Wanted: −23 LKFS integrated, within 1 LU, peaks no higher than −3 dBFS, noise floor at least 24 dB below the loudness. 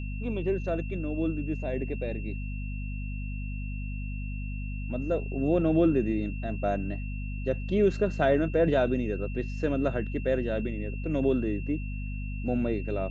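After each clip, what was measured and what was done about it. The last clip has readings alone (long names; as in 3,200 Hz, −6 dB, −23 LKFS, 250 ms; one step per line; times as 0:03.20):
mains hum 50 Hz; hum harmonics up to 250 Hz; level of the hum −31 dBFS; interfering tone 2,700 Hz; level of the tone −45 dBFS; integrated loudness −29.5 LKFS; sample peak −12.0 dBFS; target loudness −23.0 LKFS
→ hum removal 50 Hz, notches 5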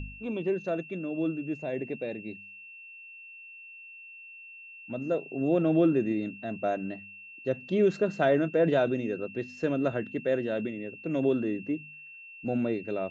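mains hum none found; interfering tone 2,700 Hz; level of the tone −45 dBFS
→ notch filter 2,700 Hz, Q 30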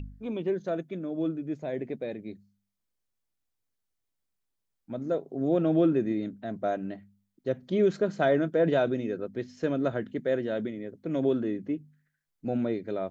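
interfering tone none found; integrated loudness −29.5 LKFS; sample peak −13.0 dBFS; target loudness −23.0 LKFS
→ level +6.5 dB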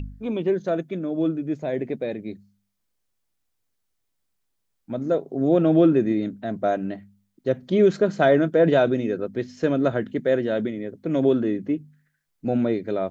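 integrated loudness −23.0 LKFS; sample peak −6.5 dBFS; background noise floor −75 dBFS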